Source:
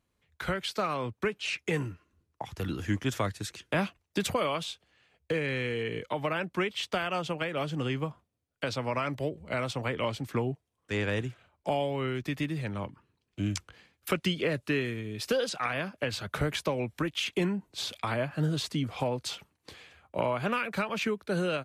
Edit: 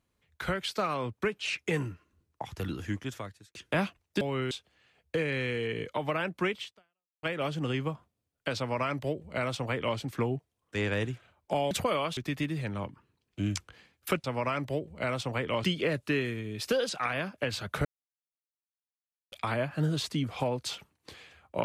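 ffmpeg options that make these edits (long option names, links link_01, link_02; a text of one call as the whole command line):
ffmpeg -i in.wav -filter_complex "[0:a]asplit=11[link_01][link_02][link_03][link_04][link_05][link_06][link_07][link_08][link_09][link_10][link_11];[link_01]atrim=end=3.55,asetpts=PTS-STARTPTS,afade=type=out:start_time=2.53:duration=1.02[link_12];[link_02]atrim=start=3.55:end=4.212,asetpts=PTS-STARTPTS,afade=type=in:duration=0.004:curve=hsin[link_13];[link_03]atrim=start=11.868:end=12.172[link_14];[link_04]atrim=start=4.668:end=7.39,asetpts=PTS-STARTPTS,afade=type=out:start_time=2.082:duration=0.64:curve=exp[link_15];[link_05]atrim=start=7.39:end=11.872,asetpts=PTS-STARTPTS,afade=type=in:duration=0.004:curve=hsin[link_16];[link_06]atrim=start=4.208:end=4.672[link_17];[link_07]atrim=start=12.168:end=14.242[link_18];[link_08]atrim=start=8.738:end=10.142[link_19];[link_09]atrim=start=14.238:end=16.45,asetpts=PTS-STARTPTS,afade=type=out:start_time=2.208:duration=0.004:curve=hsin[link_20];[link_10]atrim=start=16.45:end=17.92,asetpts=PTS-STARTPTS,volume=0[link_21];[link_11]atrim=start=17.92,asetpts=PTS-STARTPTS,afade=type=in:duration=0.004:curve=hsin[link_22];[link_12][link_13]concat=n=2:v=0:a=1[link_23];[link_23][link_14]acrossfade=duration=0.004:curve1=hsin:curve2=hsin[link_24];[link_15][link_16]concat=n=2:v=0:a=1[link_25];[link_24][link_25]acrossfade=duration=0.004:curve1=hsin:curve2=hsin[link_26];[link_26][link_17]acrossfade=duration=0.004:curve1=hsin:curve2=hsin[link_27];[link_27][link_18]acrossfade=duration=0.004:curve1=hsin:curve2=hsin[link_28];[link_28][link_19]acrossfade=duration=0.004:curve1=hsin:curve2=hsin[link_29];[link_20][link_21][link_22]concat=n=3:v=0:a=1[link_30];[link_29][link_30]acrossfade=duration=0.004:curve1=hsin:curve2=hsin" out.wav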